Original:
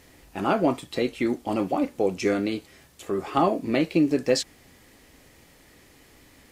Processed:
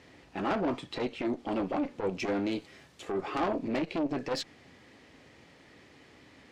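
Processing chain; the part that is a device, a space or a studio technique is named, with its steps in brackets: valve radio (BPF 95–4300 Hz; tube stage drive 23 dB, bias 0.25; core saturation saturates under 330 Hz); 2.51–3.12 high shelf 8500 Hz +10 dB

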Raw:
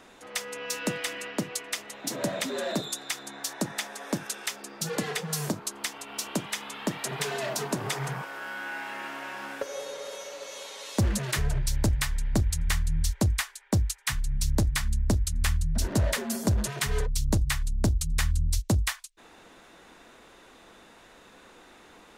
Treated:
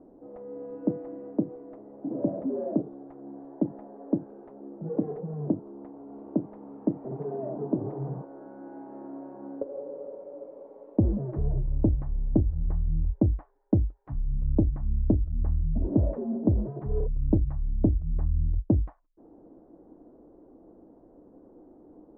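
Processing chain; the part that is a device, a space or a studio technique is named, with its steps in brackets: under water (LPF 660 Hz 24 dB/oct; bell 300 Hz +10 dB 0.48 oct)

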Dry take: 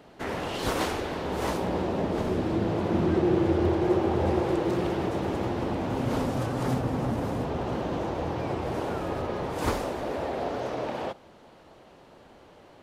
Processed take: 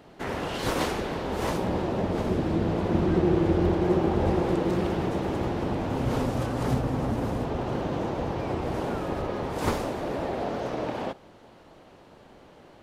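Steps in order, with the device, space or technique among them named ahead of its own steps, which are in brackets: octave pedal (harmoniser -12 st -6 dB)

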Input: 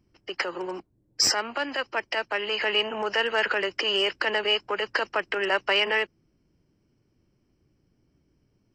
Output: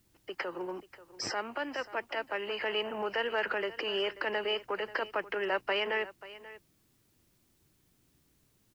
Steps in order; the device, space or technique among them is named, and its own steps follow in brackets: cassette deck with a dirty head (tape spacing loss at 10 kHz 23 dB; wow and flutter 25 cents; white noise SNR 37 dB); echo 0.536 s -17 dB; gain -4 dB

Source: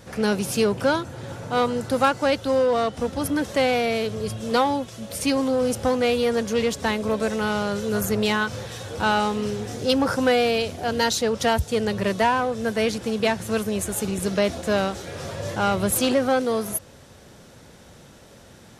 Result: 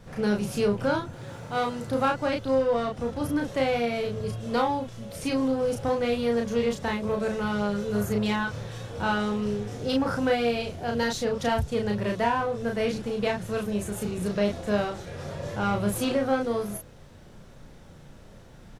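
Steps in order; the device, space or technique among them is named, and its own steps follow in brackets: car interior (bell 140 Hz +5.5 dB 0.82 oct; high shelf 3900 Hz -7.5 dB; brown noise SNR 23 dB); 1.13–1.87 tilt +1.5 dB/oct; doubler 34 ms -3 dB; gain -6 dB

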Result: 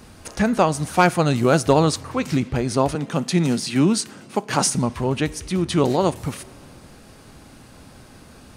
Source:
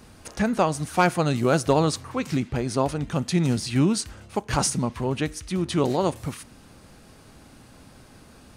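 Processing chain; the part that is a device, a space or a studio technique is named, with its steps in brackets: compressed reverb return (on a send at -14 dB: reverb RT60 1.7 s, pre-delay 8 ms + compressor, threshold -30 dBFS, peak gain reduction 14.5 dB); 2.95–4.75 on the sum: HPF 150 Hz 24 dB/oct; gain +4 dB

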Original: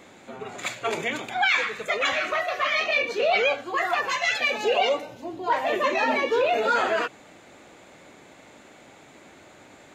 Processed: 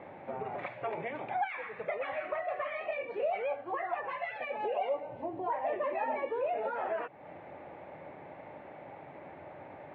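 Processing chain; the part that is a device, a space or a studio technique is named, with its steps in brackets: bass amplifier (compressor 4:1, threshold -36 dBFS, peak gain reduction 15 dB; speaker cabinet 67–2200 Hz, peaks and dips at 91 Hz +6 dB, 150 Hz +6 dB, 230 Hz -4 dB, 580 Hz +7 dB, 840 Hz +8 dB, 1400 Hz -5 dB); gain -1 dB

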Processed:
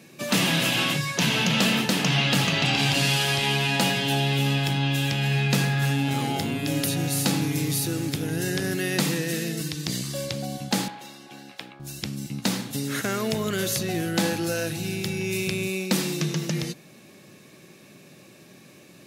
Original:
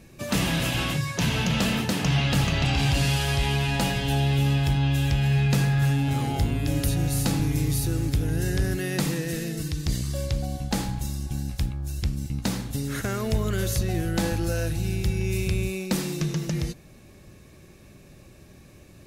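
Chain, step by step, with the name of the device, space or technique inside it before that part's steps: HPF 150 Hz 24 dB/oct; 10.88–11.8 three-band isolator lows -22 dB, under 340 Hz, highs -16 dB, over 3800 Hz; presence and air boost (bell 3300 Hz +4 dB 1.7 oct; high shelf 12000 Hz +3 dB); gain +2 dB

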